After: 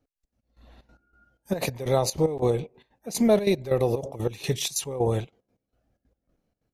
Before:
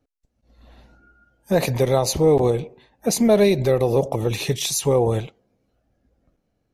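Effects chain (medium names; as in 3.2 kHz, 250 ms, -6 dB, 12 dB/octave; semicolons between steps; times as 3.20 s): trance gate "x.x.x..xxx.x..xx" 186 bpm -12 dB; trim -3.5 dB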